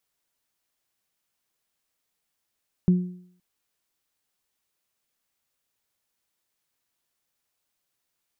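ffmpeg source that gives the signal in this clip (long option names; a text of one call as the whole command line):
ffmpeg -f lavfi -i "aevalsrc='0.237*pow(10,-3*t/0.59)*sin(2*PI*180*t)+0.0422*pow(10,-3*t/0.6)*sin(2*PI*360*t)':duration=0.52:sample_rate=44100" out.wav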